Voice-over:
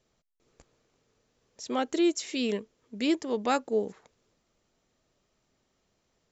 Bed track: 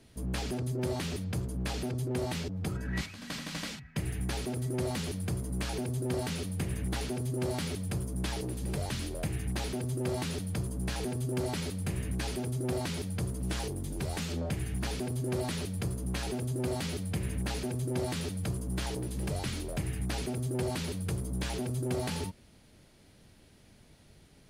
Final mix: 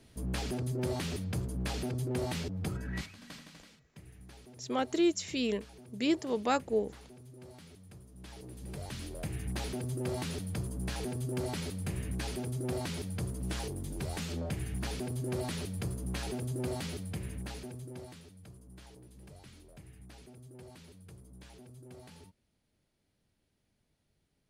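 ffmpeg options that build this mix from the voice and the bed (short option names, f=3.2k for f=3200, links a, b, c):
-filter_complex "[0:a]adelay=3000,volume=-2.5dB[a];[1:a]volume=15.5dB,afade=t=out:st=2.63:d=0.98:silence=0.125893,afade=t=in:st=8.14:d=1.44:silence=0.149624,afade=t=out:st=16.62:d=1.62:silence=0.149624[b];[a][b]amix=inputs=2:normalize=0"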